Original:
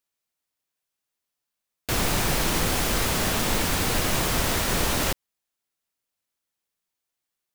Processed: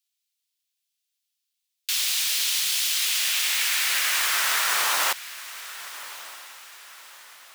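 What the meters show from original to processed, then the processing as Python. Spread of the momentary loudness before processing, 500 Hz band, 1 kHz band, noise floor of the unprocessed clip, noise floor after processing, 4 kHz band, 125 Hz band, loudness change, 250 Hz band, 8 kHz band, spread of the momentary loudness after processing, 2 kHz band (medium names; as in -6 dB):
4 LU, -14.0 dB, -2.0 dB, -85 dBFS, -81 dBFS, +5.0 dB, under -40 dB, +2.5 dB, under -25 dB, +4.0 dB, 15 LU, +3.5 dB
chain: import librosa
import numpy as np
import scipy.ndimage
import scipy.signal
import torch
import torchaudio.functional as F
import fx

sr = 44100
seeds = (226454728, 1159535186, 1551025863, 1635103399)

y = fx.filter_sweep_highpass(x, sr, from_hz=3300.0, to_hz=540.0, start_s=2.88, end_s=6.28, q=1.4)
y = fx.echo_diffused(y, sr, ms=1175, feedback_pct=41, wet_db=-15.5)
y = F.gain(torch.from_numpy(y), 3.0).numpy()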